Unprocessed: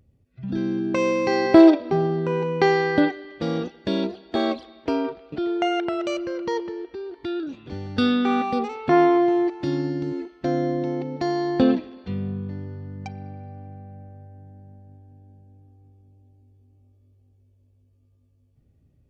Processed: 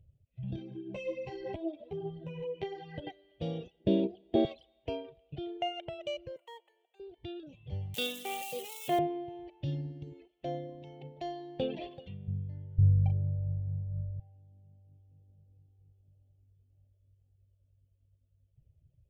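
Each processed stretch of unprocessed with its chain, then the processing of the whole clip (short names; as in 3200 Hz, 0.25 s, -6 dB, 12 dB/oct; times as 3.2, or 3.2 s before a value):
0.56–3.07 dynamic EQ 320 Hz, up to +5 dB, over -24 dBFS, Q 0.81 + compressor, threshold -19 dBFS + ensemble effect
3.8–4.45 high shelf 4200 Hz -5.5 dB + small resonant body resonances 230/330 Hz, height 13 dB, ringing for 30 ms
6.36–7 HPF 700 Hz 24 dB/oct + air absorption 150 m + decimation joined by straight lines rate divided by 4×
7.94–8.99 switching spikes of -20 dBFS + HPF 290 Hz + high shelf 2400 Hz +8 dB
10.31–12.28 bell 75 Hz -14 dB 2.2 oct + echo 0.384 s -18 dB + sustainer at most 33 dB/s
12.78–14.2 tilt -4.5 dB/oct + doubler 39 ms -6 dB + mismatched tape noise reduction decoder only
whole clip: reverb removal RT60 1.7 s; EQ curve 140 Hz 0 dB, 240 Hz -19 dB, 630 Hz -5 dB, 1300 Hz -28 dB, 3100 Hz -3 dB, 4500 Hz -20 dB, 7000 Hz -15 dB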